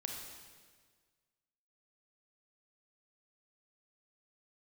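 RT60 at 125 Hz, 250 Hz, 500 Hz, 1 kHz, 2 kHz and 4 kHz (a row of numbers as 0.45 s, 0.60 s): 1.8 s, 1.7 s, 1.7 s, 1.5 s, 1.5 s, 1.5 s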